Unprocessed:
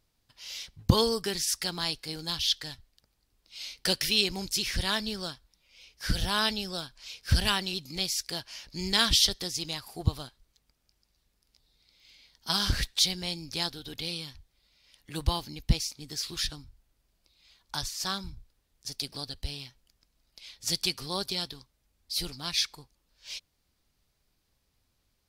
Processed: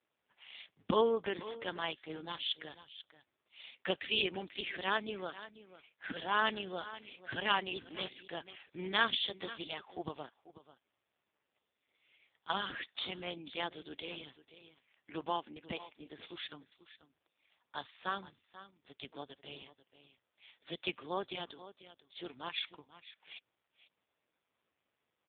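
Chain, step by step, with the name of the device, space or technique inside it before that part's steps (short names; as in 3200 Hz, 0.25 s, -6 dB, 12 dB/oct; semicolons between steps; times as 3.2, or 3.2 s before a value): 1.21–1.64 low-pass opened by the level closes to 1700 Hz, open at -30 dBFS; 15.35–16.59 HPF 180 Hz -> 78 Hz 6 dB/oct; low-pass opened by the level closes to 2700 Hz, open at -28 dBFS; satellite phone (BPF 310–3400 Hz; echo 0.489 s -15.5 dB; AMR-NB 4.75 kbps 8000 Hz)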